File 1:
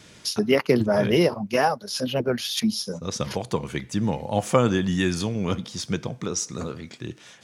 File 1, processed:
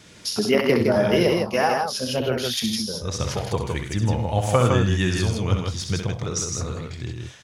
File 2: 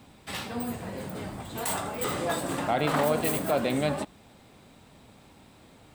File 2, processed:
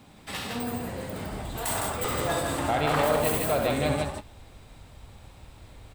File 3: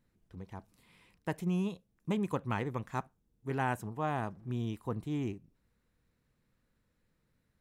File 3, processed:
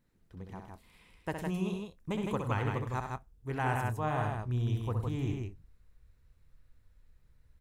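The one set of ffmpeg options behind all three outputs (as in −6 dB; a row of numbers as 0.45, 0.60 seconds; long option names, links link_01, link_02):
-af "asubboost=boost=10.5:cutoff=67,aecho=1:1:65|101|159|183:0.473|0.237|0.631|0.106"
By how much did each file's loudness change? +2.0, +1.5, +1.5 LU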